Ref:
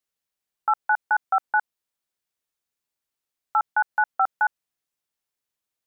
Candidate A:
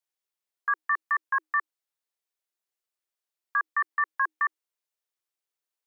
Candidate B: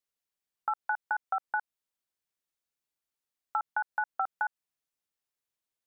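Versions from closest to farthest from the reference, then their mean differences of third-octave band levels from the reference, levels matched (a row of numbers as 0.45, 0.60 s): B, A; 1.5, 5.5 dB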